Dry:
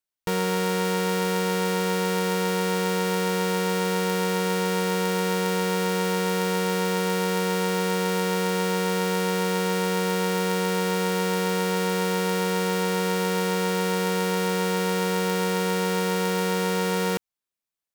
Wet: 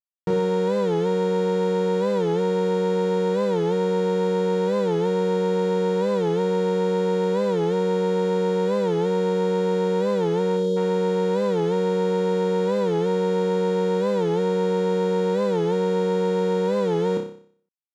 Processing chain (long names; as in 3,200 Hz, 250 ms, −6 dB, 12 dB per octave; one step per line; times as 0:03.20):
bit reduction 7 bits
high-pass filter 140 Hz
tilt shelving filter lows +9.5 dB, about 910 Hz
gain on a spectral selection 0:10.57–0:10.77, 560–2,900 Hz −26 dB
low-pass filter 5,800 Hz 12 dB per octave
parametric band 2,800 Hz −3.5 dB 0.22 octaves
flutter between parallel walls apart 5.2 metres, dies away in 0.52 s
wow of a warped record 45 rpm, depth 160 cents
level −2 dB